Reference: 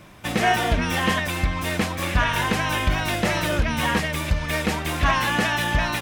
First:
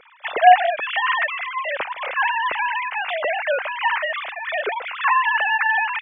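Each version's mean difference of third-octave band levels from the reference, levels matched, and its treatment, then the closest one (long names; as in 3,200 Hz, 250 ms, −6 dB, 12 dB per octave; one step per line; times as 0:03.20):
25.0 dB: three sine waves on the formant tracks
level +1.5 dB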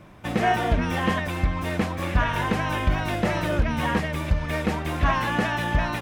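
4.0 dB: high-shelf EQ 2,200 Hz −11 dB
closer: second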